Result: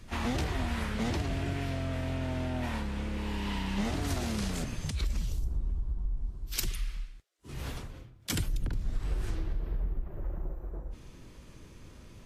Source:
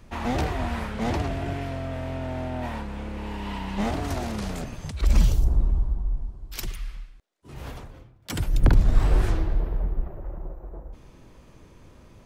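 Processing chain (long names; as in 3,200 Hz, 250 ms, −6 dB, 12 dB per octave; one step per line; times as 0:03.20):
parametric band 760 Hz −5.5 dB 1.4 octaves
downward compressor 16 to 1, threshold −27 dBFS, peak gain reduction 17 dB
high-shelf EQ 2,100 Hz +2.5 dB
Ogg Vorbis 32 kbit/s 44,100 Hz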